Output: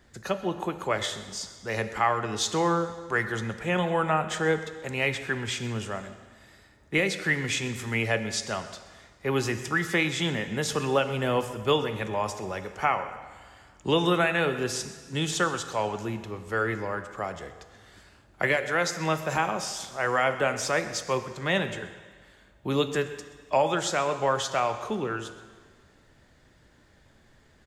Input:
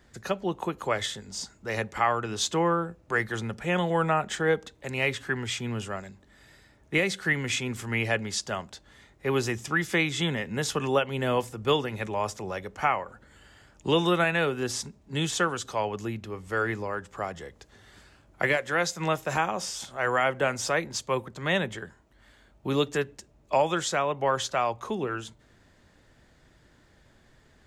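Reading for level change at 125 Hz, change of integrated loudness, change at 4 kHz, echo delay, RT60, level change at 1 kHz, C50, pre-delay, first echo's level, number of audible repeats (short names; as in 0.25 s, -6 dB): +0.5 dB, +0.5 dB, +0.5 dB, 0.128 s, 1.7 s, +0.5 dB, 10.5 dB, 8 ms, -19.0 dB, 1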